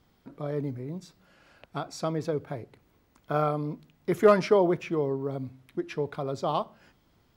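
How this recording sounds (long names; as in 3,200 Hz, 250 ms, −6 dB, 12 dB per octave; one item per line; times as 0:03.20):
background noise floor −66 dBFS
spectral slope −6.0 dB per octave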